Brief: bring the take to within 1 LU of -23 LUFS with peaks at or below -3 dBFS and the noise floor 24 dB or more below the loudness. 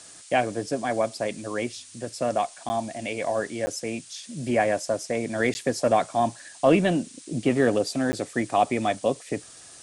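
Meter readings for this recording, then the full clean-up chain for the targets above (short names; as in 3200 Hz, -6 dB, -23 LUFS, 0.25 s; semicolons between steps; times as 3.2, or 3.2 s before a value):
dropouts 4; longest dropout 10 ms; noise floor -47 dBFS; noise floor target -50 dBFS; loudness -26.0 LUFS; peak -7.0 dBFS; loudness target -23.0 LUFS
-> interpolate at 2.69/3.66/5.54/8.12, 10 ms; noise print and reduce 6 dB; gain +3 dB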